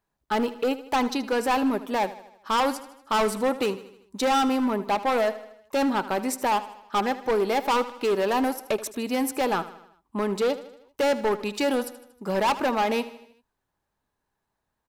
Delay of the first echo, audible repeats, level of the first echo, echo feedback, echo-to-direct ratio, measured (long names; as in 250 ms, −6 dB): 78 ms, 4, −15.5 dB, 54%, −14.0 dB